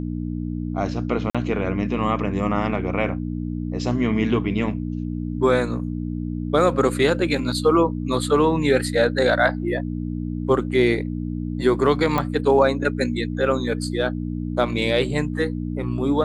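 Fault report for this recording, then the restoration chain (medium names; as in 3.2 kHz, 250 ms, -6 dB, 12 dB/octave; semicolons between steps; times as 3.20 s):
hum 60 Hz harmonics 5 -27 dBFS
1.30–1.35 s: dropout 46 ms
12.18 s: pop -10 dBFS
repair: de-click; de-hum 60 Hz, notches 5; interpolate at 1.30 s, 46 ms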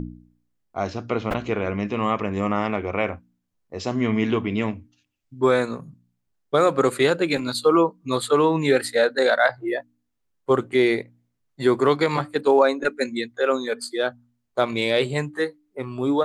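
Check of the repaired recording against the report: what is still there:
nothing left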